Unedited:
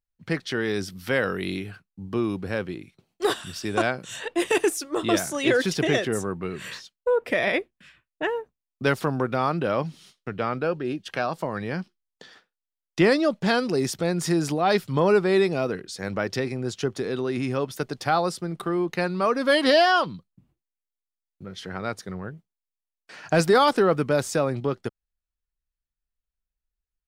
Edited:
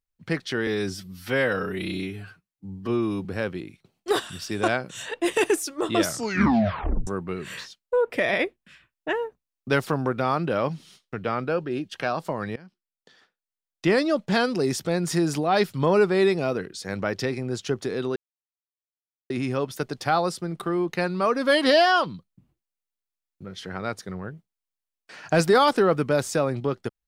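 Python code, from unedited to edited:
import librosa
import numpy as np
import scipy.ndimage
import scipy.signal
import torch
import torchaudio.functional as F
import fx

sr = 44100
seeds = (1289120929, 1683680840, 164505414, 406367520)

y = fx.edit(x, sr, fx.stretch_span(start_s=0.67, length_s=1.72, factor=1.5),
    fx.tape_stop(start_s=5.15, length_s=1.06),
    fx.fade_in_from(start_s=11.7, length_s=1.75, floor_db=-20.5),
    fx.insert_silence(at_s=17.3, length_s=1.14), tone=tone)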